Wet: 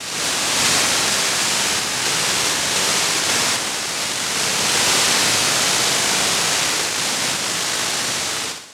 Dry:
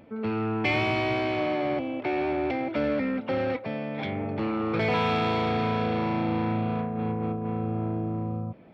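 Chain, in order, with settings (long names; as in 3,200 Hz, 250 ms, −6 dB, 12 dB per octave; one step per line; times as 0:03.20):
peak hold with a rise ahead of every peak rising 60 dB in 1.57 s
cochlear-implant simulation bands 1
flutter between parallel walls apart 10.8 metres, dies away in 0.59 s
level +5.5 dB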